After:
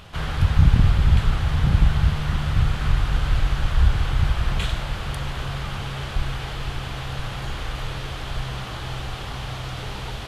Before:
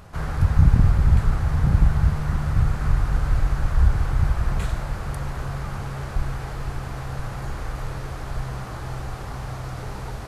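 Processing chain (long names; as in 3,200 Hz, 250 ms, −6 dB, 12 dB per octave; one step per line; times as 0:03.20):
parametric band 3,200 Hz +15 dB 0.93 octaves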